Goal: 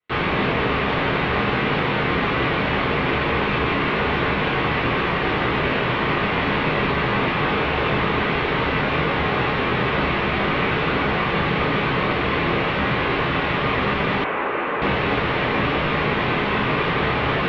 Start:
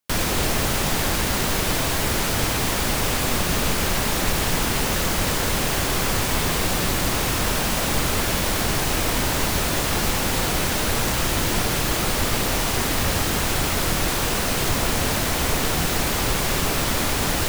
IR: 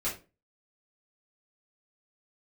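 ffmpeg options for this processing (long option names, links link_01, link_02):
-filter_complex "[1:a]atrim=start_sample=2205[link_01];[0:a][link_01]afir=irnorm=-1:irlink=0,highpass=frequency=270:width_type=q:width=0.5412,highpass=frequency=270:width_type=q:width=1.307,lowpass=frequency=3400:width_type=q:width=0.5176,lowpass=frequency=3400:width_type=q:width=0.7071,lowpass=frequency=3400:width_type=q:width=1.932,afreqshift=-160,asettb=1/sr,asplit=3[link_02][link_03][link_04];[link_02]atrim=end=14.244[link_05];[link_03]atrim=start=14.24:end=14.82,asetpts=PTS-STARTPTS,afade=type=in:duration=0.004:curve=qsin,afade=type=out:start_time=0.576:duration=0.004:curve=qsin,acrossover=split=300 2500:gain=0.126 1 0.0794[link_06][link_07][link_08];[link_06][link_07][link_08]amix=inputs=3:normalize=0[link_09];[link_04]atrim=start=14.816[link_10];[link_05][link_09]acrossfade=duration=0.004:curve1=hsin:curve2=qsin[link_11];[link_11][link_10]acrossfade=duration=0.004:curve1=qsin:curve2=hsin"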